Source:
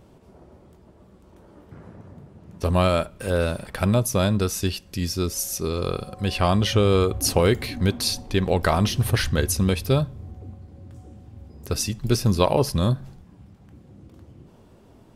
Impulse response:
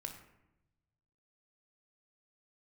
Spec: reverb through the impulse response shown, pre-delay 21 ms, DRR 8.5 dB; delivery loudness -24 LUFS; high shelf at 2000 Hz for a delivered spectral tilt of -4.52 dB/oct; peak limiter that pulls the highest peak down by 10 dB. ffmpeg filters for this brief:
-filter_complex "[0:a]highshelf=f=2k:g=3.5,alimiter=limit=-12.5dB:level=0:latency=1,asplit=2[a][b];[1:a]atrim=start_sample=2205,adelay=21[c];[b][c]afir=irnorm=-1:irlink=0,volume=-6dB[d];[a][d]amix=inputs=2:normalize=0,volume=-1dB"

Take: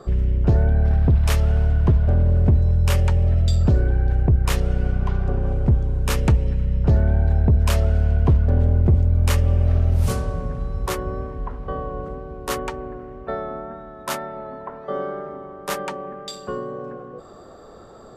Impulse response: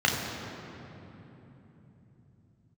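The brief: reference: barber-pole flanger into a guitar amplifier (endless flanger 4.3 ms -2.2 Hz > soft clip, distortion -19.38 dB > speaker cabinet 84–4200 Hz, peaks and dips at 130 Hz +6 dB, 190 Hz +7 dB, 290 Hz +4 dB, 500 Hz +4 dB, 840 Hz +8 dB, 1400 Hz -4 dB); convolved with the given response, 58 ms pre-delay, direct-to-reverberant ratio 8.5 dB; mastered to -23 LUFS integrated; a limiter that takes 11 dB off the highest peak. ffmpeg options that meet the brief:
-filter_complex "[0:a]alimiter=limit=-20.5dB:level=0:latency=1,asplit=2[a][b];[1:a]atrim=start_sample=2205,adelay=58[c];[b][c]afir=irnorm=-1:irlink=0,volume=-23.5dB[d];[a][d]amix=inputs=2:normalize=0,asplit=2[e][f];[f]adelay=4.3,afreqshift=-2.2[g];[e][g]amix=inputs=2:normalize=1,asoftclip=threshold=-22.5dB,highpass=84,equalizer=f=130:t=q:w=4:g=6,equalizer=f=190:t=q:w=4:g=7,equalizer=f=290:t=q:w=4:g=4,equalizer=f=500:t=q:w=4:g=4,equalizer=f=840:t=q:w=4:g=8,equalizer=f=1.4k:t=q:w=4:g=-4,lowpass=f=4.2k:w=0.5412,lowpass=f=4.2k:w=1.3066,volume=10dB"

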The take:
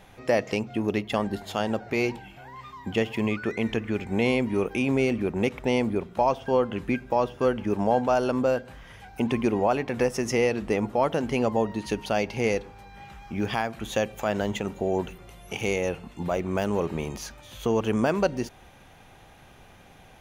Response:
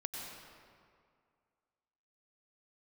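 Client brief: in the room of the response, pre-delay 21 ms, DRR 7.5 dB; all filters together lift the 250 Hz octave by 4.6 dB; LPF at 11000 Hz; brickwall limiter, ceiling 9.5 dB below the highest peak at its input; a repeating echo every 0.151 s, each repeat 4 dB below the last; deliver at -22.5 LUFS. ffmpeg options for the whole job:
-filter_complex "[0:a]lowpass=11k,equalizer=f=250:t=o:g=5.5,alimiter=limit=-18dB:level=0:latency=1,aecho=1:1:151|302|453|604|755|906|1057|1208|1359:0.631|0.398|0.25|0.158|0.0994|0.0626|0.0394|0.0249|0.0157,asplit=2[a][b];[1:a]atrim=start_sample=2205,adelay=21[c];[b][c]afir=irnorm=-1:irlink=0,volume=-8dB[d];[a][d]amix=inputs=2:normalize=0,volume=4.5dB"

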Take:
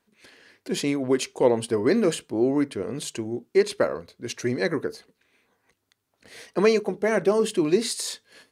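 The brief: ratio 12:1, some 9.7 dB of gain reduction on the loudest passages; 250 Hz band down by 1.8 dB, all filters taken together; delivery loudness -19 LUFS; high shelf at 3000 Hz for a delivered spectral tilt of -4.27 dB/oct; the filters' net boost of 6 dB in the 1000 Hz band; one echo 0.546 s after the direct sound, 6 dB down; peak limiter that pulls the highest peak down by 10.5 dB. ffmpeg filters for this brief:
-af "equalizer=f=250:t=o:g=-3,equalizer=f=1k:t=o:g=8,highshelf=f=3k:g=-4,acompressor=threshold=-23dB:ratio=12,alimiter=limit=-20.5dB:level=0:latency=1,aecho=1:1:546:0.501,volume=12.5dB"

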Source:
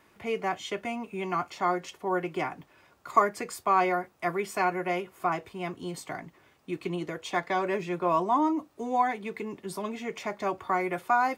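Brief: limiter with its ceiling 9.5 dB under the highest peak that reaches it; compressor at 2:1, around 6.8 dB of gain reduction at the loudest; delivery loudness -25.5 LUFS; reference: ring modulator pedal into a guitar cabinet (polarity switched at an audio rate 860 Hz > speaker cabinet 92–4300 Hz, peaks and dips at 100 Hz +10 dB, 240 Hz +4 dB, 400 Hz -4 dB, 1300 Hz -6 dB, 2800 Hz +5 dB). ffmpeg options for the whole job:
-af "acompressor=threshold=-28dB:ratio=2,alimiter=limit=-24dB:level=0:latency=1,aeval=exprs='val(0)*sgn(sin(2*PI*860*n/s))':c=same,highpass=92,equalizer=f=100:t=q:w=4:g=10,equalizer=f=240:t=q:w=4:g=4,equalizer=f=400:t=q:w=4:g=-4,equalizer=f=1.3k:t=q:w=4:g=-6,equalizer=f=2.8k:t=q:w=4:g=5,lowpass=f=4.3k:w=0.5412,lowpass=f=4.3k:w=1.3066,volume=9dB"

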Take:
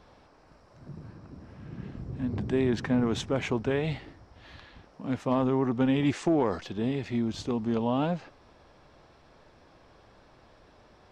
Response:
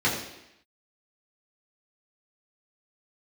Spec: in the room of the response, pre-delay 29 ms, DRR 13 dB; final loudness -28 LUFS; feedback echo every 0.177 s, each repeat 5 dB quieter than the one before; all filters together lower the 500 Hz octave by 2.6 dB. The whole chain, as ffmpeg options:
-filter_complex "[0:a]equalizer=f=500:t=o:g=-3.5,aecho=1:1:177|354|531|708|885|1062|1239:0.562|0.315|0.176|0.0988|0.0553|0.031|0.0173,asplit=2[a][b];[1:a]atrim=start_sample=2205,adelay=29[c];[b][c]afir=irnorm=-1:irlink=0,volume=-27.5dB[d];[a][d]amix=inputs=2:normalize=0"

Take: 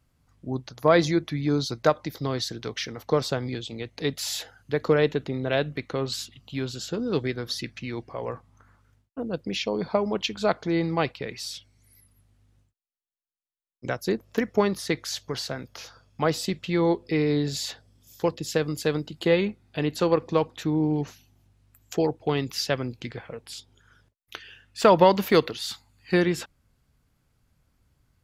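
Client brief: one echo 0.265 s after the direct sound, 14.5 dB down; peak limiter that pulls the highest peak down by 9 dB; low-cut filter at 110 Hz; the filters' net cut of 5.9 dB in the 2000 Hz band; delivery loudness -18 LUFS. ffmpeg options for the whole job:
-af "highpass=110,equalizer=f=2k:t=o:g=-7.5,alimiter=limit=-13.5dB:level=0:latency=1,aecho=1:1:265:0.188,volume=10.5dB"

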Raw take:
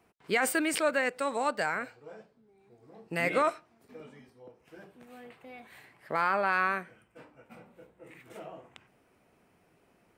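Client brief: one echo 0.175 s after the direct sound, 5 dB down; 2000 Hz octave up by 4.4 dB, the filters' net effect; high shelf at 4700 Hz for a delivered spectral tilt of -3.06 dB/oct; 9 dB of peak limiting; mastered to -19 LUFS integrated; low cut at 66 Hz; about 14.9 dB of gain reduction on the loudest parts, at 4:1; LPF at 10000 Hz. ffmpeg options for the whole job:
-af "highpass=66,lowpass=10k,equalizer=f=2k:t=o:g=4.5,highshelf=f=4.7k:g=7.5,acompressor=threshold=-39dB:ratio=4,alimiter=level_in=8.5dB:limit=-24dB:level=0:latency=1,volume=-8.5dB,aecho=1:1:175:0.562,volume=26dB"

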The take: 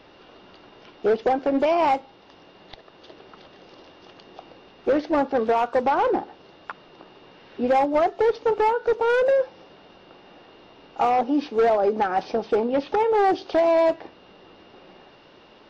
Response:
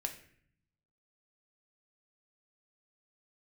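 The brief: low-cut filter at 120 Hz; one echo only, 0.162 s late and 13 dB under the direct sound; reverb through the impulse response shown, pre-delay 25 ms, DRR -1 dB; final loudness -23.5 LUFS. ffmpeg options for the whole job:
-filter_complex "[0:a]highpass=120,aecho=1:1:162:0.224,asplit=2[a][b];[1:a]atrim=start_sample=2205,adelay=25[c];[b][c]afir=irnorm=-1:irlink=0,volume=1dB[d];[a][d]amix=inputs=2:normalize=0,volume=-4.5dB"

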